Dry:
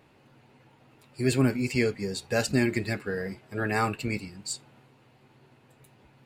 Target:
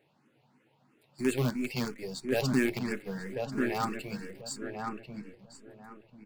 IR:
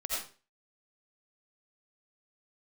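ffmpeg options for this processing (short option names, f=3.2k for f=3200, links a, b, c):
-filter_complex "[0:a]lowshelf=f=110:t=q:w=1.5:g=-11.5,asplit=2[a][b];[b]acrusher=bits=4:dc=4:mix=0:aa=0.000001,volume=-3.5dB[c];[a][c]amix=inputs=2:normalize=0,asplit=2[d][e];[e]adelay=1041,lowpass=f=1.7k:p=1,volume=-3.5dB,asplit=2[f][g];[g]adelay=1041,lowpass=f=1.7k:p=1,volume=0.26,asplit=2[h][i];[i]adelay=1041,lowpass=f=1.7k:p=1,volume=0.26,asplit=2[j][k];[k]adelay=1041,lowpass=f=1.7k:p=1,volume=0.26[l];[d][f][h][j][l]amix=inputs=5:normalize=0,asplit=2[m][n];[n]afreqshift=3[o];[m][o]amix=inputs=2:normalize=1,volume=-7dB"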